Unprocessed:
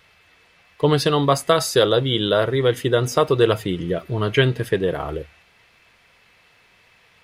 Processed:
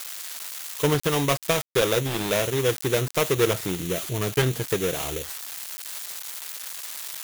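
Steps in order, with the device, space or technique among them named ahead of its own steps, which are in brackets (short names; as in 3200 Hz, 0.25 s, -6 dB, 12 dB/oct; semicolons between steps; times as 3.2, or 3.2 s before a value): budget class-D amplifier (switching dead time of 0.29 ms; switching spikes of -10 dBFS); gain -4.5 dB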